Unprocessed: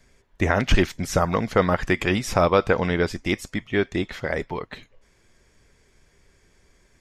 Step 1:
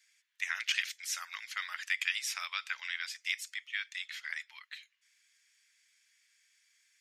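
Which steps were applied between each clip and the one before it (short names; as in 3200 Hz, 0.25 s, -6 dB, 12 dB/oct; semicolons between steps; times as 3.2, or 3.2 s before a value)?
inverse Chebyshev high-pass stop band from 320 Hz, stop band 80 dB; gain -3.5 dB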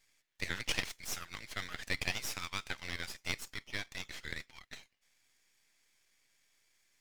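half-wave rectifier; gain +1 dB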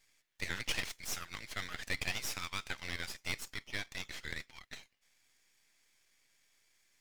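soft clip -22 dBFS, distortion -16 dB; gain +1 dB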